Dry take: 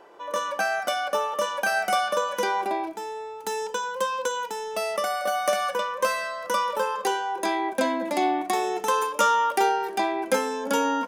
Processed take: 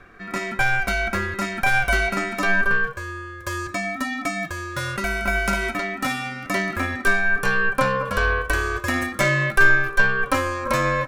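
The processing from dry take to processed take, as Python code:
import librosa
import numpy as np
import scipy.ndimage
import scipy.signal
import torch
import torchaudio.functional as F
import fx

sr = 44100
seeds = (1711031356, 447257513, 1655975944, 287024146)

y = fx.tube_stage(x, sr, drive_db=15.0, bias=0.6)
y = fx.small_body(y, sr, hz=(230.0, 790.0, 1500.0), ring_ms=50, db=13)
y = y * np.sin(2.0 * np.pi * 790.0 * np.arange(len(y)) / sr)
y = F.gain(torch.from_numpy(y), 5.0).numpy()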